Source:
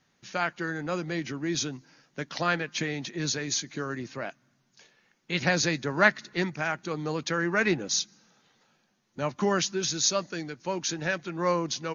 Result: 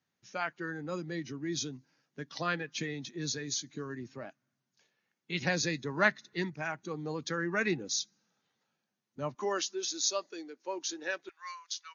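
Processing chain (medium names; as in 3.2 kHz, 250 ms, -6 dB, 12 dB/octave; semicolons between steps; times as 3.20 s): high-pass 60 Hz 24 dB/octave, from 9.35 s 280 Hz, from 11.29 s 1.3 kHz; spectral noise reduction 9 dB; trim -5.5 dB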